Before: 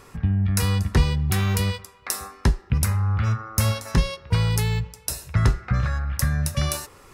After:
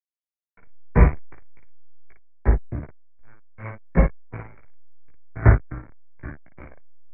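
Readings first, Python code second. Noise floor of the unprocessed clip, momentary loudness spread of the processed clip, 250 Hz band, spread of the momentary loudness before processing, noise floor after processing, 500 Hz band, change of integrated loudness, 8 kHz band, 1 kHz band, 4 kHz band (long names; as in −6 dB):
−50 dBFS, 21 LU, −2.0 dB, 6 LU, below −85 dBFS, +2.0 dB, +2.0 dB, below −40 dB, −2.5 dB, below −35 dB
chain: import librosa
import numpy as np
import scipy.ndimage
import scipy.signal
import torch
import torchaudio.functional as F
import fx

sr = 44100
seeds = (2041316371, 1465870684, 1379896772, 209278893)

p1 = fx.noise_reduce_blind(x, sr, reduce_db=17)
p2 = fx.cheby_harmonics(p1, sr, harmonics=(3, 5, 6, 7), levels_db=(-17, -23, -23, -16), full_scale_db=-7.0)
p3 = fx.level_steps(p2, sr, step_db=17)
p4 = p2 + (p3 * 10.0 ** (0.5 / 20.0))
p5 = fx.backlash(p4, sr, play_db=-24.5)
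p6 = scipy.signal.sosfilt(scipy.signal.cheby1(6, 3, 2300.0, 'lowpass', fs=sr, output='sos'), p5)
p7 = fx.hpss(p6, sr, part='harmonic', gain_db=7)
p8 = p7 + fx.room_early_taps(p7, sr, ms=(17, 56), db=(-3.5, -3.5), dry=0)
p9 = fx.band_widen(p8, sr, depth_pct=100)
y = p9 * 10.0 ** (-9.0 / 20.0)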